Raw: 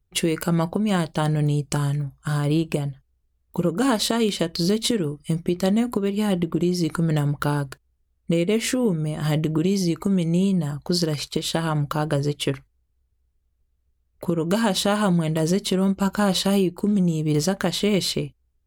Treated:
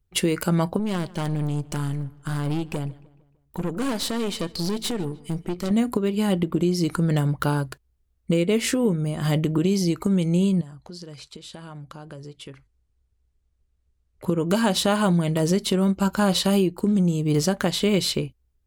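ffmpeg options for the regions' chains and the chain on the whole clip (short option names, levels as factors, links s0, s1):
-filter_complex "[0:a]asettb=1/sr,asplit=3[s0][s1][s2];[s0]atrim=end=0.794[s3];[s1]atrim=start=0.79:end=5.71,asetpts=PTS-STARTPTS,afade=t=in:d=0.004:c=qsin,afade=t=out:st=4.916:d=0.004:c=qsin,aeval=exprs='(tanh(12.6*val(0)+0.55)-tanh(0.55))/12.6':c=same,asplit=2[s4][s5];[s5]adelay=151,lowpass=f=3700:p=1,volume=0.0891,asplit=2[s6][s7];[s7]adelay=151,lowpass=f=3700:p=1,volume=0.49,asplit=2[s8][s9];[s9]adelay=151,lowpass=f=3700:p=1,volume=0.49,asplit=2[s10][s11];[s11]adelay=151,lowpass=f=3700:p=1,volume=0.49[s12];[s4][s6][s8][s10][s12]amix=inputs=5:normalize=0,atrim=end_sample=216972[s13];[s2]atrim=start=5.706[s14];[s3][s13]acrossfade=d=0.004:c1=hsin:c2=qsin[s15];[s15][s14]acrossfade=d=0.004:c1=qsin:c2=hsin,asettb=1/sr,asplit=3[s16][s17][s18];[s16]atrim=end=10.614[s19];[s17]atrim=start=10.61:end=14.24,asetpts=PTS-STARTPTS,afade=t=in:d=0.004:c=qsin,afade=t=out:st=3.626:d=0.004:c=qsin,acompressor=threshold=0.00562:ratio=2.5:attack=3.2:release=140:knee=1:detection=peak,lowpass=f=10000:w=0.5412,lowpass=f=10000:w=1.3066[s20];[s18]atrim=start=14.236[s21];[s19][s20]acrossfade=d=0.004:c1=hsin:c2=qsin[s22];[s22][s21]acrossfade=d=0.004:c1=qsin:c2=hsin"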